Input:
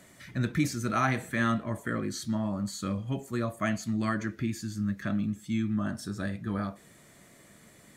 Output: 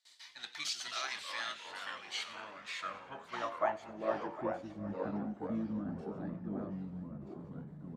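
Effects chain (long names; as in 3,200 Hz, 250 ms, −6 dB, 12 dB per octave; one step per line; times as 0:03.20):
high-pass filter 60 Hz 6 dB per octave
noise gate with hold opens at −45 dBFS
parametric band 160 Hz −14.5 dB 1.7 octaves
pitch-shifted copies added −12 semitones −3 dB
band-pass filter sweep 4,400 Hz → 240 Hz, 0:01.68–0:04.98
delay with pitch and tempo change per echo 147 ms, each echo −3 semitones, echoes 3, each echo −6 dB
echo with a time of its own for lows and highs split 2,000 Hz, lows 755 ms, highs 92 ms, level −16 dB
level +4.5 dB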